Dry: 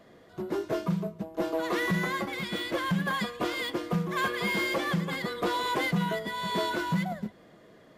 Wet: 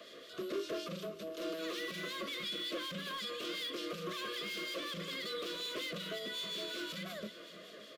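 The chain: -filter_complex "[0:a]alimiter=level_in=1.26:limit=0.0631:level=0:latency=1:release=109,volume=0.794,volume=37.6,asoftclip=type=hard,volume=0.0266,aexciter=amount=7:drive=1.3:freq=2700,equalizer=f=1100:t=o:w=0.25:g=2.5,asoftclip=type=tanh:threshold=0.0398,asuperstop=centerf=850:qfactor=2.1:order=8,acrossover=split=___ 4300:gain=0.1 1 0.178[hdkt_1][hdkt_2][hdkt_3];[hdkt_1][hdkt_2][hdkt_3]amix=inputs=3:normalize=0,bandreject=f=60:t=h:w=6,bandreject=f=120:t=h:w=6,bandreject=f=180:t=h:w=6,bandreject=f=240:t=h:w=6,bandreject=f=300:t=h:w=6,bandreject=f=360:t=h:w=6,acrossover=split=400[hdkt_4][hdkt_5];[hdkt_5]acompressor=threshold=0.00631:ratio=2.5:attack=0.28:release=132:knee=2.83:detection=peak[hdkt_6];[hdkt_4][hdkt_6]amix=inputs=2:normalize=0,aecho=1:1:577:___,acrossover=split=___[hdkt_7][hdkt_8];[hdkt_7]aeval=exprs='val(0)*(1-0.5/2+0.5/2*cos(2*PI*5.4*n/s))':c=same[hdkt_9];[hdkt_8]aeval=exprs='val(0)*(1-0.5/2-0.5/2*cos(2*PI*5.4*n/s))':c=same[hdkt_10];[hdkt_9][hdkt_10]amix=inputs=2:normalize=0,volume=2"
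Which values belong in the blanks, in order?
300, 0.15, 2300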